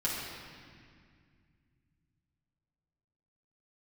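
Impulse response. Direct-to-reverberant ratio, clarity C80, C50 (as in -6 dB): -7.0 dB, 1.0 dB, -0.5 dB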